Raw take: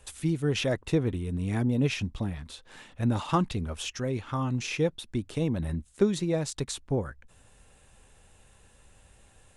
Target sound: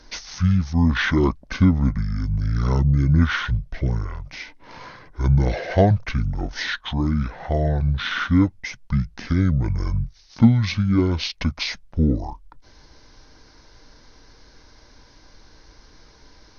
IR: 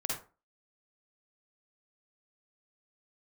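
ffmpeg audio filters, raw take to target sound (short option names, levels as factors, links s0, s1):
-af "asetrate=25442,aresample=44100,volume=2.66"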